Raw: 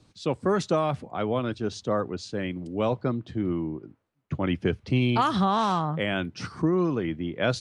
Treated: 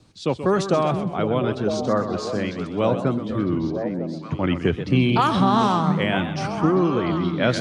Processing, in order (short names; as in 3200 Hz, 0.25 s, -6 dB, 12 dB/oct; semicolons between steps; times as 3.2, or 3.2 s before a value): vibrato 3.3 Hz 23 cents; delay with a stepping band-pass 0.476 s, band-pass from 210 Hz, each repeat 1.4 oct, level -2 dB; warbling echo 0.128 s, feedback 41%, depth 146 cents, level -10.5 dB; gain +4 dB